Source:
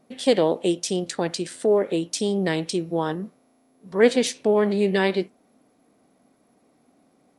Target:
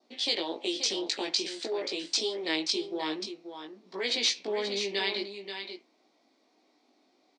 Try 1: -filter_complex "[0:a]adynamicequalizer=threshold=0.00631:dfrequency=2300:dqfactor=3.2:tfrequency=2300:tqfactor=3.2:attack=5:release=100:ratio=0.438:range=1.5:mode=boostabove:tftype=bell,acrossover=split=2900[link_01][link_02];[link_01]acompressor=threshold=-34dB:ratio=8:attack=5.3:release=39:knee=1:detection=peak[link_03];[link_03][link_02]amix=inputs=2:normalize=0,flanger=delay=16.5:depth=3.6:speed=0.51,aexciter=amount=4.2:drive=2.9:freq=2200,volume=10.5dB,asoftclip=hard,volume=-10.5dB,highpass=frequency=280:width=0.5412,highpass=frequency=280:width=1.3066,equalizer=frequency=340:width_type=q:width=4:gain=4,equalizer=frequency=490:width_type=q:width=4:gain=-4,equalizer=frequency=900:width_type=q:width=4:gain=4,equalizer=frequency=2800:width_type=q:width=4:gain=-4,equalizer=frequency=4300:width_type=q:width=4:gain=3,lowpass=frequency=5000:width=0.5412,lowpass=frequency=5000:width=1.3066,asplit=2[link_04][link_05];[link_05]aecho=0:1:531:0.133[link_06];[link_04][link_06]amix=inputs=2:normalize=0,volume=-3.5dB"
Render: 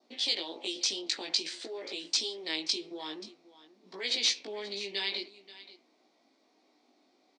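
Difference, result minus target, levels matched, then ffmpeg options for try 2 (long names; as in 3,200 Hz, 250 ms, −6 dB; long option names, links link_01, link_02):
downward compressor: peak gain reduction +8 dB; echo-to-direct −9 dB
-filter_complex "[0:a]adynamicequalizer=threshold=0.00631:dfrequency=2300:dqfactor=3.2:tfrequency=2300:tqfactor=3.2:attack=5:release=100:ratio=0.438:range=1.5:mode=boostabove:tftype=bell,acrossover=split=2900[link_01][link_02];[link_01]acompressor=threshold=-25dB:ratio=8:attack=5.3:release=39:knee=1:detection=peak[link_03];[link_03][link_02]amix=inputs=2:normalize=0,flanger=delay=16.5:depth=3.6:speed=0.51,aexciter=amount=4.2:drive=2.9:freq=2200,volume=10.5dB,asoftclip=hard,volume=-10.5dB,highpass=frequency=280:width=0.5412,highpass=frequency=280:width=1.3066,equalizer=frequency=340:width_type=q:width=4:gain=4,equalizer=frequency=490:width_type=q:width=4:gain=-4,equalizer=frequency=900:width_type=q:width=4:gain=4,equalizer=frequency=2800:width_type=q:width=4:gain=-4,equalizer=frequency=4300:width_type=q:width=4:gain=3,lowpass=frequency=5000:width=0.5412,lowpass=frequency=5000:width=1.3066,asplit=2[link_04][link_05];[link_05]aecho=0:1:531:0.376[link_06];[link_04][link_06]amix=inputs=2:normalize=0,volume=-3.5dB"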